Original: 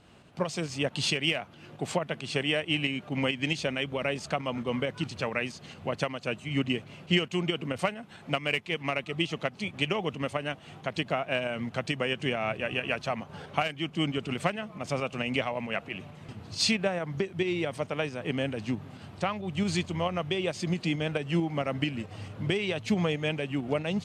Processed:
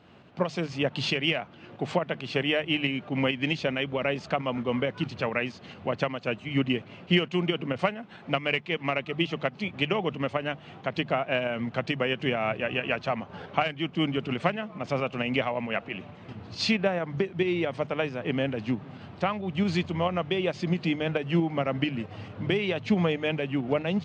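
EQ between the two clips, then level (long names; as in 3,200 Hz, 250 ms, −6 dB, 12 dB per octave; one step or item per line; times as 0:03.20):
Gaussian smoothing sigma 1.8 samples
high-pass filter 78 Hz
mains-hum notches 50/100/150 Hz
+3.0 dB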